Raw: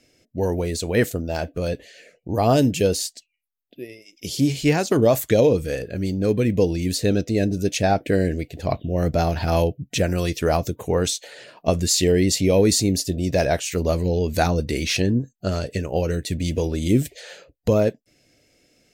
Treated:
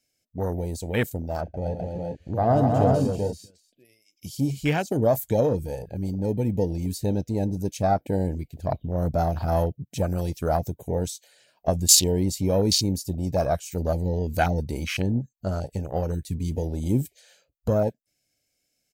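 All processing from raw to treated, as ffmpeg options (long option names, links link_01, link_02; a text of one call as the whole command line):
ffmpeg -i in.wav -filter_complex "[0:a]asettb=1/sr,asplit=3[link_01][link_02][link_03];[link_01]atrim=end=1.414[link_04];[link_02]atrim=start=1.41:end=3.85,asetpts=PTS-STARTPTS,afade=type=in:duration=0.004:curve=qsin,afade=type=out:start_time=2.436:duration=0.004:curve=qsin,aemphasis=mode=reproduction:type=75kf,aecho=1:1:42|128|241|384|413|632:0.224|0.422|0.596|0.708|0.398|0.106,atrim=end_sample=107604[link_05];[link_03]atrim=start=3.846[link_06];[link_04][link_05]acrossfade=duration=0.004:curve1=hsin:curve2=qsin[link_07];[link_07][link_06]acrossfade=duration=0.004:curve1=qsin:curve2=hsin,aecho=1:1:1.3:0.36,afwtdn=0.0631,aemphasis=mode=production:type=75kf,volume=-4.5dB" out.wav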